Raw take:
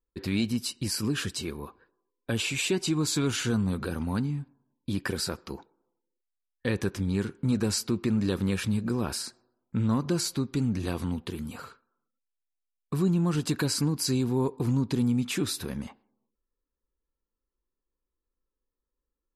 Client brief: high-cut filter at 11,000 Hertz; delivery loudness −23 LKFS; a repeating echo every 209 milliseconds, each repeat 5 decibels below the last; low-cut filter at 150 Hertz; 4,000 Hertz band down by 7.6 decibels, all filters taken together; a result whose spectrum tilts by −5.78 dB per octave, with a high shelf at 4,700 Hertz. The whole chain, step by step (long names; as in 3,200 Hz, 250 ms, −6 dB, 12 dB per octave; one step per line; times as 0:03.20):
high-pass filter 150 Hz
low-pass filter 11,000 Hz
parametric band 4,000 Hz −7 dB
high-shelf EQ 4,700 Hz −5 dB
repeating echo 209 ms, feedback 56%, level −5 dB
level +6.5 dB